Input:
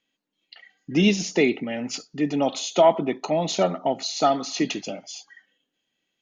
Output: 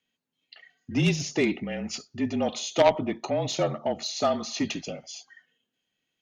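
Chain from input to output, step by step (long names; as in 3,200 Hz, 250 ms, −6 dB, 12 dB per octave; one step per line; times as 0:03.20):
harmonic generator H 3 −11 dB, 5 −19 dB, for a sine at −6.5 dBFS
frequency shifter −37 Hz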